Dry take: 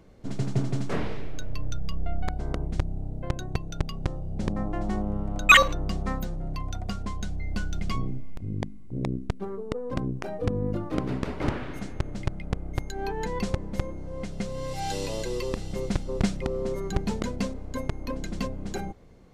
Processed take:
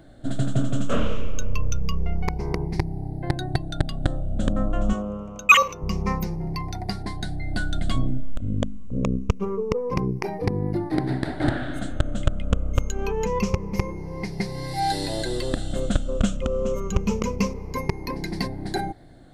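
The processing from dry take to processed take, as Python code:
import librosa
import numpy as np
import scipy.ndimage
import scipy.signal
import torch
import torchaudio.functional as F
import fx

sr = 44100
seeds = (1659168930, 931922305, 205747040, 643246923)

y = fx.spec_ripple(x, sr, per_octave=0.81, drift_hz=-0.26, depth_db=14)
y = fx.highpass(y, sr, hz=330.0, slope=6, at=(4.93, 5.82))
y = fx.rider(y, sr, range_db=4, speed_s=0.5)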